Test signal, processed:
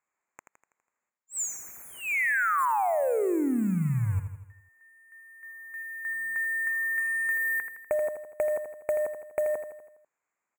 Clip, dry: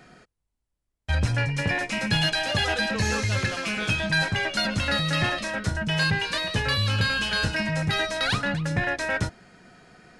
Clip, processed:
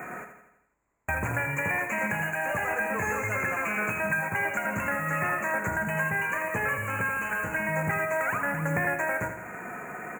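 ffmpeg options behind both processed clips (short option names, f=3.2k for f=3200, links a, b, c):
-af "highpass=f=420:p=1,equalizer=f=1k:w=2.5:g=4.5,acompressor=threshold=-40dB:ratio=8,aresample=16000,aeval=exprs='0.0562*sin(PI/2*1.78*val(0)/0.0562)':c=same,aresample=44100,acrusher=bits=4:mode=log:mix=0:aa=0.000001,asuperstop=centerf=4200:order=12:qfactor=0.92,aecho=1:1:82|164|246|328|410|492:0.376|0.203|0.11|0.0592|0.032|0.0173,volume=6dB"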